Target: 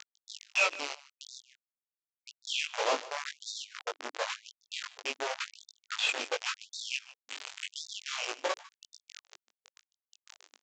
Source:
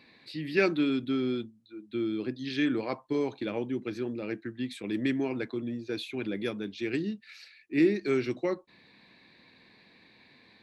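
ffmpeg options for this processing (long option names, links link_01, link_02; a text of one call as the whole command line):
ffmpeg -i in.wav -af "aeval=exprs='val(0)+0.5*0.0335*sgn(val(0))':channel_layout=same,afwtdn=0.0158,afftfilt=real='re*lt(hypot(re,im),0.501)':imag='im*lt(hypot(re,im),0.501)':win_size=1024:overlap=0.75,firequalizer=gain_entry='entry(110,0);entry(320,-22);entry(470,0);entry(1300,0);entry(1800,-24);entry(2600,8);entry(4400,-8)':delay=0.05:min_phase=1,volume=23.5dB,asoftclip=hard,volume=-23.5dB,acrusher=bits=4:mix=0:aa=0.000001,flanger=delay=18.5:depth=3:speed=0.35,aecho=1:1:150:0.119,aresample=16000,aresample=44100,afftfilt=real='re*gte(b*sr/1024,250*pow(3600/250,0.5+0.5*sin(2*PI*0.92*pts/sr)))':imag='im*gte(b*sr/1024,250*pow(3600/250,0.5+0.5*sin(2*PI*0.92*pts/sr)))':win_size=1024:overlap=0.75,volume=5.5dB" out.wav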